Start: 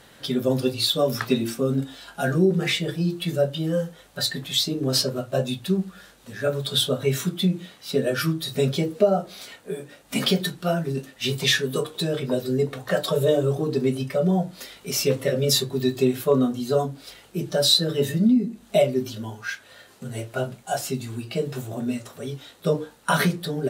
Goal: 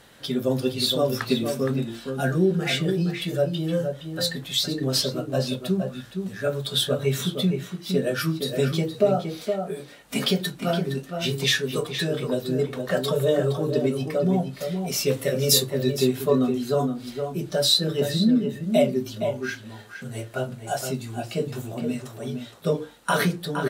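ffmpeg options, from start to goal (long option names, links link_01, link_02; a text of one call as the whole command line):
ffmpeg -i in.wav -filter_complex "[0:a]asettb=1/sr,asplit=3[link_01][link_02][link_03];[link_01]atrim=end=15.084[link_04];[link_02]atrim=start=15.08:end=15.7,asetpts=PTS-STARTPTS,afade=type=in:duration=0.004:curve=qsin,afade=type=out:start_time=0.616:duration=0.004:curve=qsin,highshelf=frequency=7200:gain=10[link_05];[link_03]atrim=start=15.696[link_06];[link_04][link_05]acrossfade=duration=0.004:curve1=hsin:curve2=qsin[link_07];[link_07][link_06]acrossfade=duration=0.004:curve1=qsin:curve2=hsin,asplit=2[link_08][link_09];[link_09]adelay=466.5,volume=-6dB,highshelf=frequency=4000:gain=-10.5[link_10];[link_08][link_10]amix=inputs=2:normalize=0,volume=-1.5dB" out.wav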